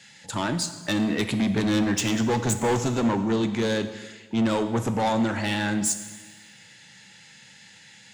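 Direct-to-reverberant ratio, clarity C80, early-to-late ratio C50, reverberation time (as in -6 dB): 8.5 dB, 12.5 dB, 11.0 dB, 1.4 s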